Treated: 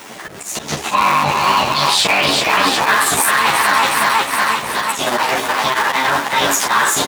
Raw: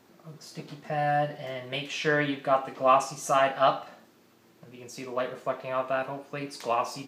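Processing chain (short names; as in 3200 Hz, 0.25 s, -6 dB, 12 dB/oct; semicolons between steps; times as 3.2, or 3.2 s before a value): cycle switcher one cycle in 3, muted; HPF 53 Hz; low shelf 380 Hz -11 dB; notch 500 Hz, Q 12; auto swell 0.152 s; formant shift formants +6 st; feedback echo 0.364 s, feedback 59%, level -8 dB; maximiser +32.5 dB; ensemble effect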